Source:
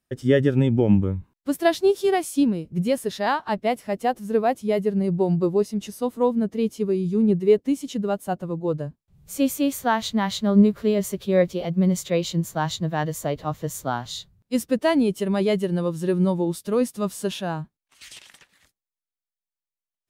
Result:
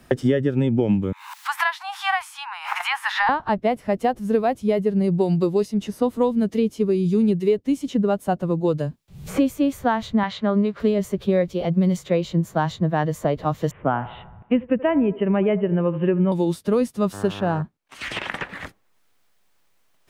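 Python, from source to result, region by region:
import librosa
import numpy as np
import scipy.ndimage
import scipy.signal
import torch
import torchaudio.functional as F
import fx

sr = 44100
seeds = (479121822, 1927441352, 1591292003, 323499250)

y = fx.chain(x, sr, fx.steep_highpass(hz=810.0, slope=96),
    fx.pre_swell(db_per_s=59.0), at=(1.12, 3.29))
y = fx.chain(y, sr, fx.lowpass(hz=3700.0, slope=12),
    fx.tilt_eq(slope=3.5), at=(10.23, 10.8))
y = fx.chain(y, sr, fx.steep_lowpass(hz=2900.0, slope=72),
    fx.echo_wet_bandpass(ms=77, feedback_pct=45, hz=740.0, wet_db=-15), at=(13.71, 16.32))
y = fx.backlash(y, sr, play_db=-42.0, at=(17.12, 17.61), fade=0.02)
y = fx.dmg_buzz(y, sr, base_hz=100.0, harmonics=18, level_db=-41.0, tilt_db=-3, odd_only=False, at=(17.12, 17.61), fade=0.02)
y = fx.high_shelf(y, sr, hz=3600.0, db=-11.0)
y = fx.band_squash(y, sr, depth_pct=100)
y = y * 10.0 ** (1.5 / 20.0)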